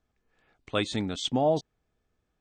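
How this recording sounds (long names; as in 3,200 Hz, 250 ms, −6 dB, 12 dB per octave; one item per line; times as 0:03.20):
background noise floor −79 dBFS
spectral slope −4.0 dB per octave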